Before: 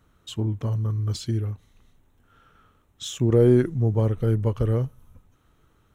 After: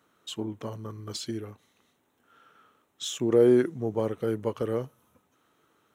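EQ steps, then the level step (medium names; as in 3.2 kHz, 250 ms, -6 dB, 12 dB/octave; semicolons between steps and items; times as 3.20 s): high-pass 280 Hz 12 dB/octave; 0.0 dB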